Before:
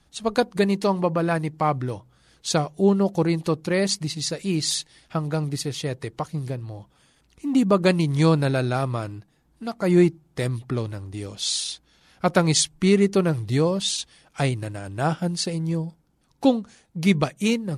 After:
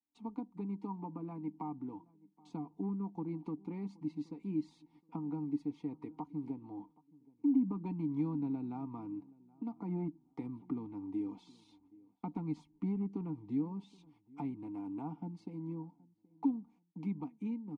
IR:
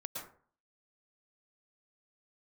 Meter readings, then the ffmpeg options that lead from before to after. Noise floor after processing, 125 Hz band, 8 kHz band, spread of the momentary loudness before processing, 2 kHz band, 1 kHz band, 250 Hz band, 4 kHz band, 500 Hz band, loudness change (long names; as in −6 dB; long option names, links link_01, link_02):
−73 dBFS, −19.5 dB, below −40 dB, 13 LU, below −30 dB, −20.0 dB, −12.5 dB, below −40 dB, −25.5 dB, −16.5 dB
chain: -filter_complex "[0:a]dynaudnorm=framelen=230:gausssize=31:maxgain=4dB,aeval=exprs='clip(val(0),-1,0.211)':channel_layout=same,agate=range=-26dB:threshold=-45dB:ratio=16:detection=peak,aecho=1:1:4.2:0.54,acrossover=split=170[link_01][link_02];[link_02]acompressor=threshold=-33dB:ratio=6[link_03];[link_01][link_03]amix=inputs=2:normalize=0,asplit=3[link_04][link_05][link_06];[link_04]bandpass=frequency=300:width_type=q:width=8,volume=0dB[link_07];[link_05]bandpass=frequency=870:width_type=q:width=8,volume=-6dB[link_08];[link_06]bandpass=frequency=2240:width_type=q:width=8,volume=-9dB[link_09];[link_07][link_08][link_09]amix=inputs=3:normalize=0,highshelf=frequency=1600:width_type=q:width=1.5:gain=-9.5,asplit=2[link_10][link_11];[link_11]adelay=774,lowpass=frequency=1200:poles=1,volume=-23dB,asplit=2[link_12][link_13];[link_13]adelay=774,lowpass=frequency=1200:poles=1,volume=0.27[link_14];[link_10][link_12][link_14]amix=inputs=3:normalize=0,volume=3dB"